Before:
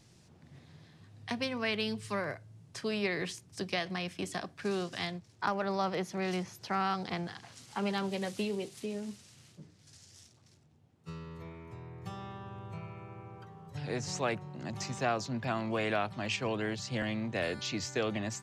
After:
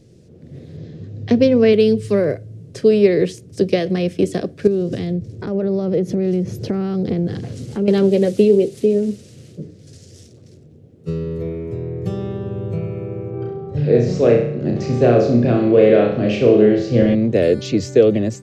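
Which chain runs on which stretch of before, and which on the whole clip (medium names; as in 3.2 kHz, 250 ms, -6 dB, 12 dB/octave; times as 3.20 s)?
0.77–1.73 s: steep low-pass 7.5 kHz 48 dB/octave + bass shelf 430 Hz +4.5 dB
4.67–7.88 s: bass shelf 340 Hz +12 dB + compression 10:1, threshold -36 dBFS
13.30–17.15 s: Gaussian low-pass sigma 1.6 samples + flutter echo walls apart 5.7 m, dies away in 0.63 s
whole clip: resonant low shelf 660 Hz +11 dB, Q 3; level rider gain up to 7 dB; trim +1 dB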